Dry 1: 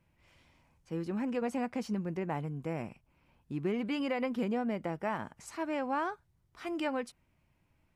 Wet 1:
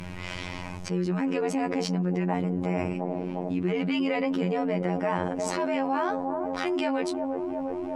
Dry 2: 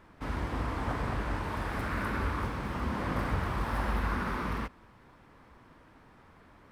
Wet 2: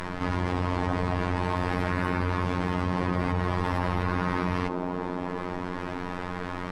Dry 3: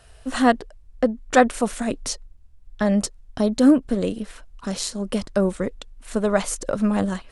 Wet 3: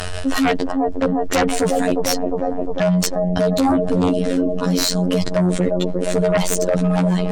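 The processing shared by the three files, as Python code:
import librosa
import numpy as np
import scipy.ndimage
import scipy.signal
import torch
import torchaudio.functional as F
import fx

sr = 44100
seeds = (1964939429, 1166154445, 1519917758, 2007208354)

y = scipy.signal.sosfilt(scipy.signal.butter(2, 7600.0, 'lowpass', fs=sr, output='sos'), x)
y = fx.dynamic_eq(y, sr, hz=1400.0, q=2.2, threshold_db=-45.0, ratio=4.0, max_db=-5)
y = y + 0.36 * np.pad(y, (int(6.4 * sr / 1000.0), 0))[:len(y)]
y = fx.echo_wet_bandpass(y, sr, ms=354, feedback_pct=60, hz=430.0, wet_db=-10.0)
y = fx.robotise(y, sr, hz=89.8)
y = fx.fold_sine(y, sr, drive_db=13, ceiling_db=-1.5)
y = fx.env_flatten(y, sr, amount_pct=70)
y = y * 10.0 ** (-11.0 / 20.0)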